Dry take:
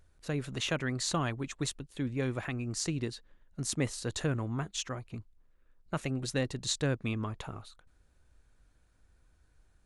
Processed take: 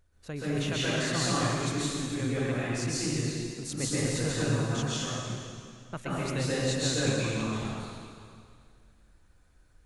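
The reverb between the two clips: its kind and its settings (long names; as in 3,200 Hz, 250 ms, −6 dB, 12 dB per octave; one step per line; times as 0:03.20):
dense smooth reverb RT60 2.2 s, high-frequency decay 0.95×, pre-delay 115 ms, DRR −9 dB
level −4.5 dB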